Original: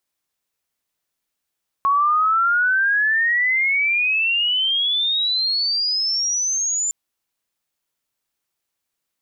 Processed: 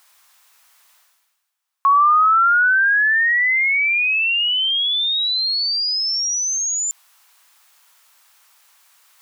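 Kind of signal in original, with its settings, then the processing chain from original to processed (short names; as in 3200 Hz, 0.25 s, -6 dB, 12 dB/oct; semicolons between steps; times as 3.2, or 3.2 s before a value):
chirp logarithmic 1100 Hz -> 7200 Hz -14 dBFS -> -19 dBFS 5.06 s
reverse; upward compressor, threshold -35 dBFS; reverse; resonant high-pass 1000 Hz, resonance Q 1.5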